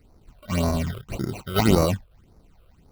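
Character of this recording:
aliases and images of a low sample rate 1,700 Hz, jitter 0%
phaser sweep stages 8, 1.8 Hz, lowest notch 240–3,000 Hz

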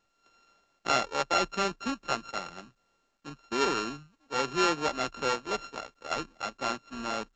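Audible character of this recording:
a buzz of ramps at a fixed pitch in blocks of 32 samples
mu-law

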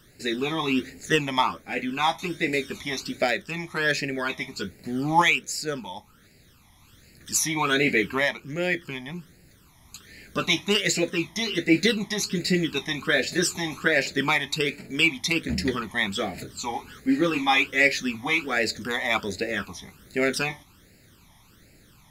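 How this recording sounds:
phaser sweep stages 12, 1.3 Hz, lowest notch 460–1,100 Hz

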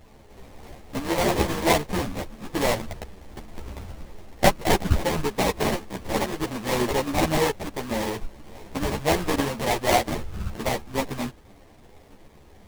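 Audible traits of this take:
aliases and images of a low sample rate 1,400 Hz, jitter 20%
a shimmering, thickened sound

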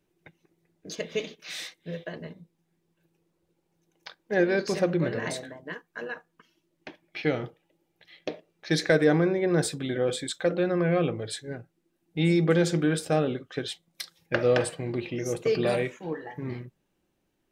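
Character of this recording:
background noise floor −76 dBFS
spectral slope −5.5 dB per octave

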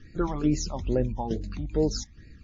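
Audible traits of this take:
phaser sweep stages 12, 2.3 Hz, lowest notch 440–1,100 Hz
tremolo saw down 2.3 Hz, depth 55%
WMA

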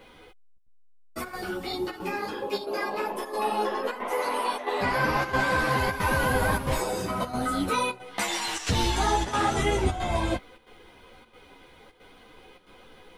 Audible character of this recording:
a quantiser's noise floor 12 bits, dither none
chopped level 1.5 Hz, depth 65%, duty 85%
a shimmering, thickened sound

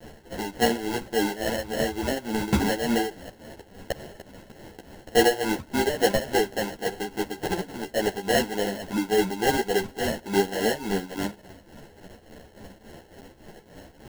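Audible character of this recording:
a quantiser's noise floor 8 bits, dither triangular
tremolo triangle 3.5 Hz, depth 80%
aliases and images of a low sample rate 1,200 Hz, jitter 0%
a shimmering, thickened sound

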